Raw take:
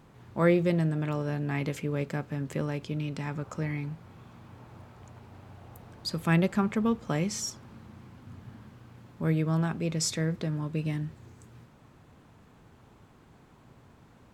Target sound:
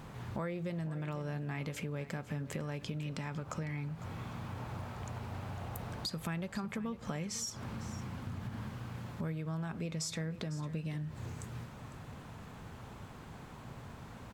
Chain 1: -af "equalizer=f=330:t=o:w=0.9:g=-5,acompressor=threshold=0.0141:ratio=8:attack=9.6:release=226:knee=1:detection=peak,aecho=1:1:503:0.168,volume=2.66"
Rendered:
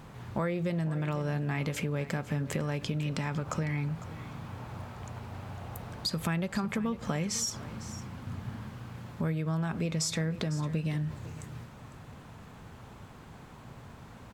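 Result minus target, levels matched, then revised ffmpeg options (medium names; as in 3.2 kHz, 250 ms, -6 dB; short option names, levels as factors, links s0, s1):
compression: peak gain reduction -7 dB
-af "equalizer=f=330:t=o:w=0.9:g=-5,acompressor=threshold=0.00562:ratio=8:attack=9.6:release=226:knee=1:detection=peak,aecho=1:1:503:0.168,volume=2.66"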